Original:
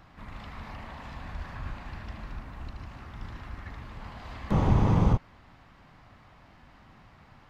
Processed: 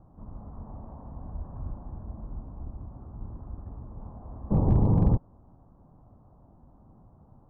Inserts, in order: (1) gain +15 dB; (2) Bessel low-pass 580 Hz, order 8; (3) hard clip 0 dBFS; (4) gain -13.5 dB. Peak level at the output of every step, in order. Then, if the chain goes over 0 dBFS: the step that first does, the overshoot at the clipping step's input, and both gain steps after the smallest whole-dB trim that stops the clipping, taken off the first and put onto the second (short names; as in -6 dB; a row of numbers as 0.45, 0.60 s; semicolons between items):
+5.0, +4.5, 0.0, -13.5 dBFS; step 1, 4.5 dB; step 1 +10 dB, step 4 -8.5 dB